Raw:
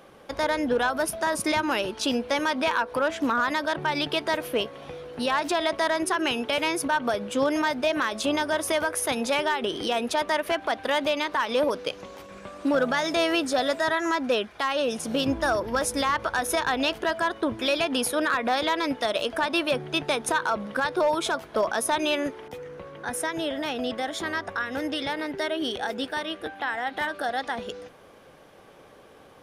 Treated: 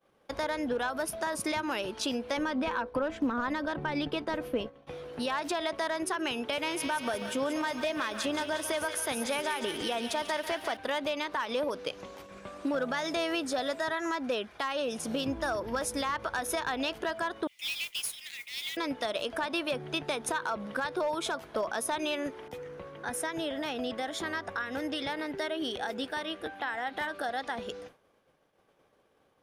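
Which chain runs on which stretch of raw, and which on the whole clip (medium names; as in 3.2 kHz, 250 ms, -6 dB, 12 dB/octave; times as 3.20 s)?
2.37–4.87 s: expander -34 dBFS + tilt EQ -2.5 dB/octave + comb 3.9 ms, depth 31%
6.47–10.77 s: feedback echo behind a high-pass 179 ms, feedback 67%, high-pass 1.9 kHz, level -6.5 dB + bit-crushed delay 141 ms, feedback 35%, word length 8-bit, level -14 dB
17.47–18.77 s: rippled Chebyshev high-pass 2 kHz, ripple 3 dB + modulation noise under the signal 11 dB
whole clip: expander -41 dBFS; compression 2:1, threshold -28 dBFS; trim -3 dB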